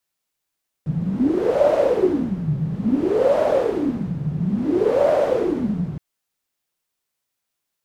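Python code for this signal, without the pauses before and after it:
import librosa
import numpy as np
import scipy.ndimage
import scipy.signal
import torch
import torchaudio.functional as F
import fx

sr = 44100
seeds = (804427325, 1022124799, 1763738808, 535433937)

y = fx.wind(sr, seeds[0], length_s=5.12, low_hz=150.0, high_hz=590.0, q=12.0, gusts=3, swing_db=7.5)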